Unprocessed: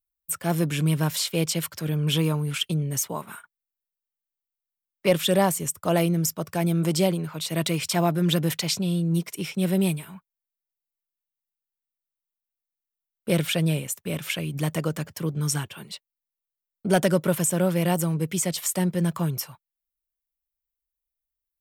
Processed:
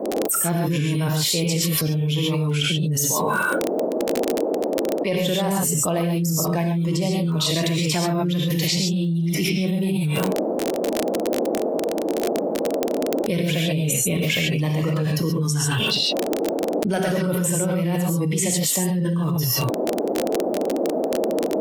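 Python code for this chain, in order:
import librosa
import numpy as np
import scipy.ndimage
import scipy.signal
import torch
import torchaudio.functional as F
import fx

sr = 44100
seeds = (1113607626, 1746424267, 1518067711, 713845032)

y = fx.noise_reduce_blind(x, sr, reduce_db=14)
y = fx.dmg_noise_band(y, sr, seeds[0], low_hz=230.0, high_hz=660.0, level_db=-57.0)
y = fx.rev_gated(y, sr, seeds[1], gate_ms=160, shape='rising', drr_db=-1.0)
y = fx.dmg_crackle(y, sr, seeds[2], per_s=30.0, level_db=-39.0)
y = fx.env_flatten(y, sr, amount_pct=100)
y = y * librosa.db_to_amplitude(-9.5)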